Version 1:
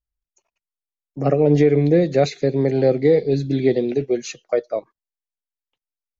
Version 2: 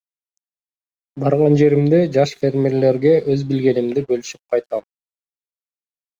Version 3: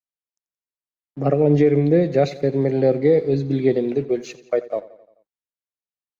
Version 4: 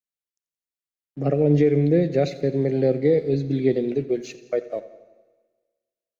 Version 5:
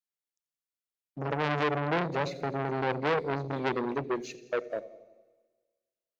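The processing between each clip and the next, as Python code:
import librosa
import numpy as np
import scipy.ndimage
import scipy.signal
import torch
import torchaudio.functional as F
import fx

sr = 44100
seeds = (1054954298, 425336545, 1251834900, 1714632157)

y1 = np.sign(x) * np.maximum(np.abs(x) - 10.0 ** (-49.5 / 20.0), 0.0)
y1 = y1 * 10.0 ** (2.0 / 20.0)
y2 = fx.high_shelf(y1, sr, hz=4800.0, db=-11.0)
y2 = fx.echo_feedback(y2, sr, ms=87, feedback_pct=57, wet_db=-18)
y2 = y2 * 10.0 ** (-2.5 / 20.0)
y3 = fx.peak_eq(y2, sr, hz=980.0, db=-9.0, octaves=1.0)
y3 = fx.rev_schroeder(y3, sr, rt60_s=1.5, comb_ms=27, drr_db=16.5)
y3 = y3 * 10.0 ** (-1.5 / 20.0)
y4 = fx.transformer_sat(y3, sr, knee_hz=1700.0)
y4 = y4 * 10.0 ** (-4.0 / 20.0)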